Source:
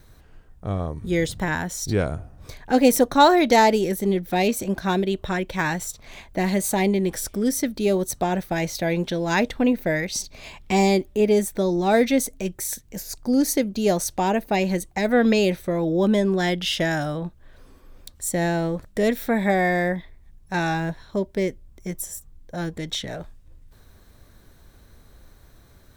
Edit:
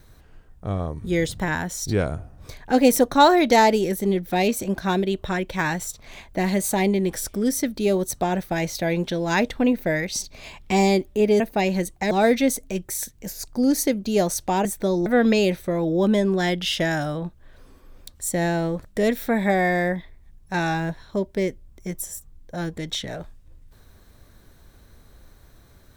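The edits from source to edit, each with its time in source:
11.4–11.81 swap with 14.35–15.06

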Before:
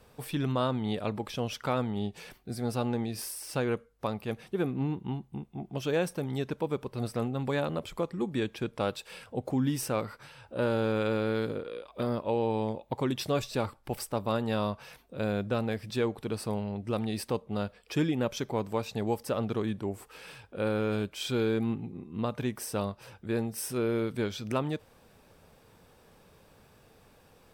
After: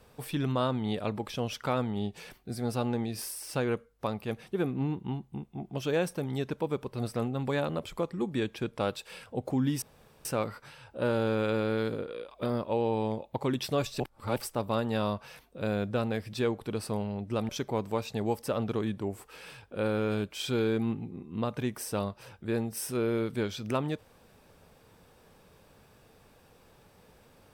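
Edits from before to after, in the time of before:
9.82 insert room tone 0.43 s
13.57–13.93 reverse
17.06–18.3 cut

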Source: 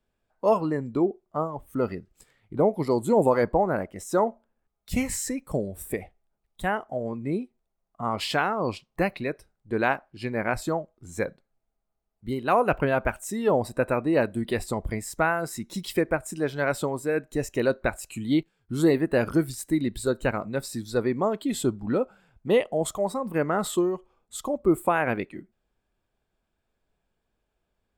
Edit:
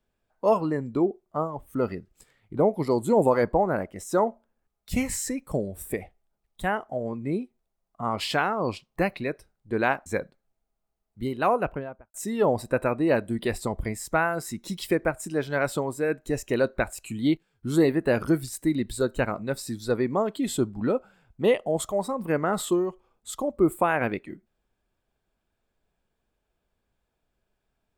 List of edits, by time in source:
10.06–11.12 cut
12.38–13.2 studio fade out

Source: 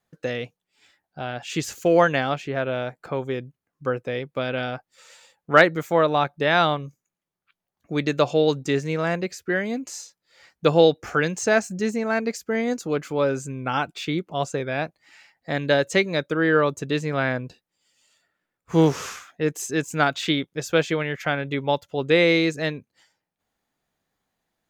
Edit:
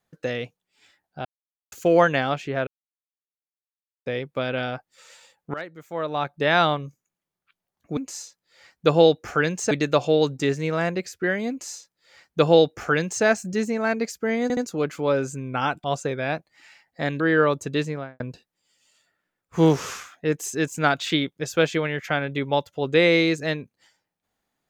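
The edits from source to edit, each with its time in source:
1.25–1.72 mute
2.67–4.06 mute
5.54–6.44 fade in quadratic, from -20.5 dB
9.76–11.5 copy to 7.97
12.69 stutter 0.07 s, 3 plays
13.96–14.33 cut
15.69–16.36 cut
16.94–17.36 studio fade out

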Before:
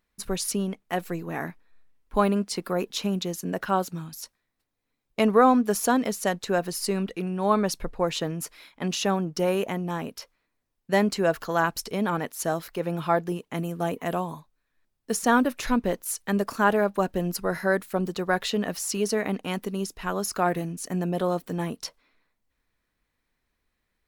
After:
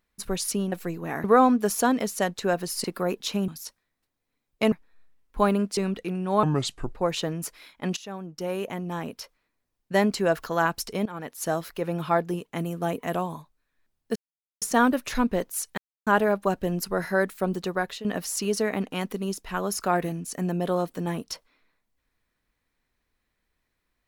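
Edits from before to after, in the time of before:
0.72–0.97 cut
1.49–2.54 swap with 5.29–6.89
3.18–4.05 cut
7.55–7.9 speed 72%
8.95–10.17 fade in, from -18 dB
12.04–12.47 fade in, from -17.5 dB
15.14 insert silence 0.46 s
16.3–16.59 mute
18.19–18.57 fade out, to -14 dB

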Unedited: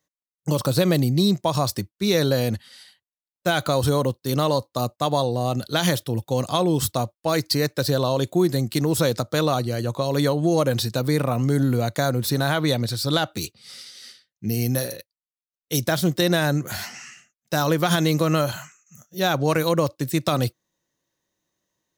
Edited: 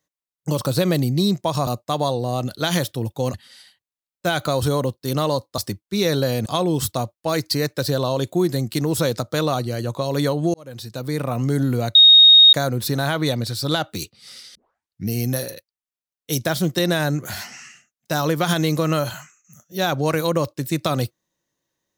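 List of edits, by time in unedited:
1.67–2.55 swap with 4.79–6.46
10.54–11.43 fade in
11.95 add tone 3730 Hz -6 dBFS 0.58 s
13.97 tape start 0.53 s

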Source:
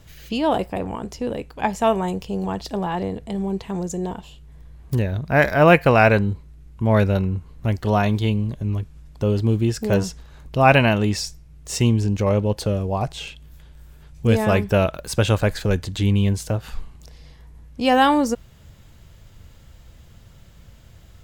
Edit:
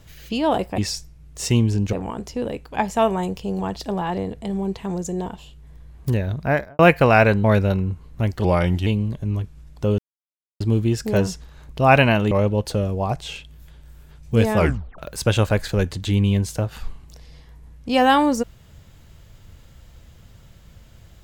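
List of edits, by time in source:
5.24–5.64 studio fade out
6.29–6.89 cut
7.89–8.25 speed 85%
9.37 insert silence 0.62 s
11.08–12.23 move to 0.78
14.49 tape stop 0.41 s

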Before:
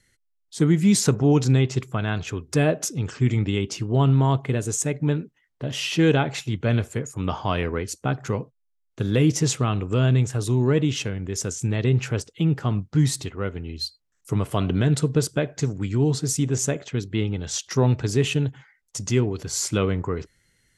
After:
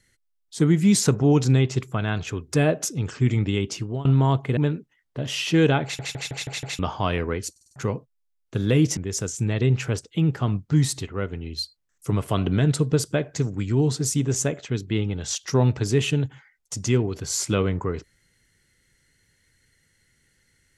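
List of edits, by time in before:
3.67–4.05 fade out equal-power, to -24 dB
4.57–5.02 cut
6.28 stutter in place 0.16 s, 6 plays
7.96 stutter in place 0.05 s, 5 plays
9.42–11.2 cut

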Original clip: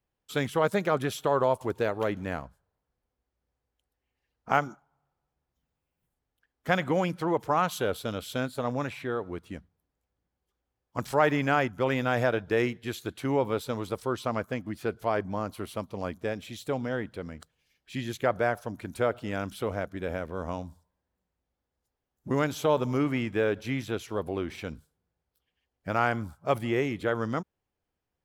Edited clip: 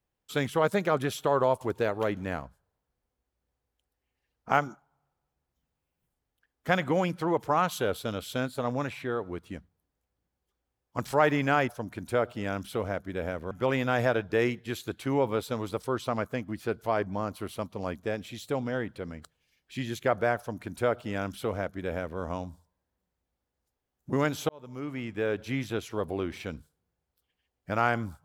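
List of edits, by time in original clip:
18.56–20.38 copy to 11.69
22.67–23.76 fade in

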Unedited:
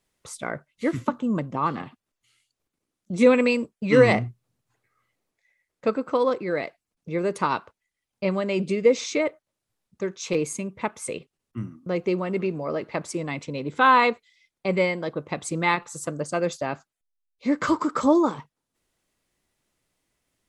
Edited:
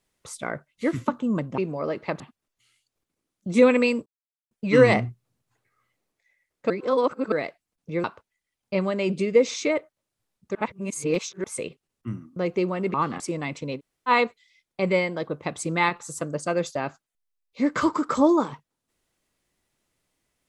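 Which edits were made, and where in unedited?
1.58–1.84 swap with 12.44–13.06
3.7 insert silence 0.45 s
5.89–6.51 reverse
7.23–7.54 cut
10.05–10.94 reverse
13.64–13.95 room tone, crossfade 0.06 s

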